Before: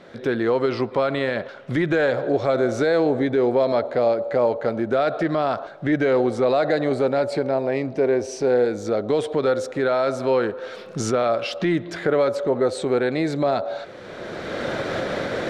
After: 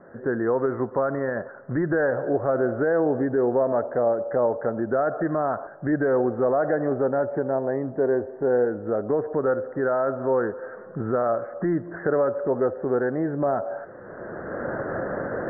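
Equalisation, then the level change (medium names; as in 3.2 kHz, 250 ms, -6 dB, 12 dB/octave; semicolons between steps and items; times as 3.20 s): steep low-pass 1.8 kHz 96 dB/octave; -2.5 dB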